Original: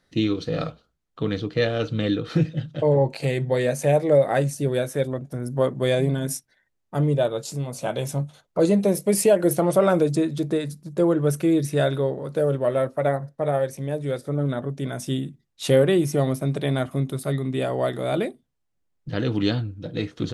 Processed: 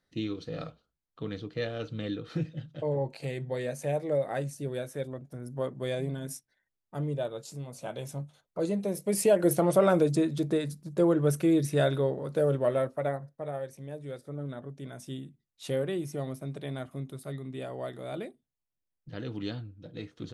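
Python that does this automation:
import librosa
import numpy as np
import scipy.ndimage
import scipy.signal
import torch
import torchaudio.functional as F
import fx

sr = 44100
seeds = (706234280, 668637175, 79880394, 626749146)

y = fx.gain(x, sr, db=fx.line((8.89, -11.0), (9.4, -4.0), (12.66, -4.0), (13.49, -13.0)))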